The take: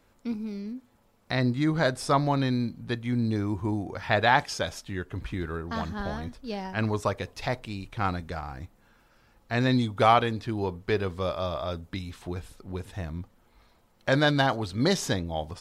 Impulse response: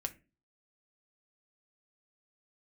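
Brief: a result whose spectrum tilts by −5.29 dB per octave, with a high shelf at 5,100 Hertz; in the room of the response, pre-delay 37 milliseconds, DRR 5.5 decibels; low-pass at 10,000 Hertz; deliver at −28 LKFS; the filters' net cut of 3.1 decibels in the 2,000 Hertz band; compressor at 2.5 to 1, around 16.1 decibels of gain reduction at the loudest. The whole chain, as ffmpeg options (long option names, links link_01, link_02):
-filter_complex "[0:a]lowpass=10000,equalizer=frequency=2000:width_type=o:gain=-5,highshelf=frequency=5100:gain=7.5,acompressor=threshold=-41dB:ratio=2.5,asplit=2[link_01][link_02];[1:a]atrim=start_sample=2205,adelay=37[link_03];[link_02][link_03]afir=irnorm=-1:irlink=0,volume=-5.5dB[link_04];[link_01][link_04]amix=inputs=2:normalize=0,volume=11.5dB"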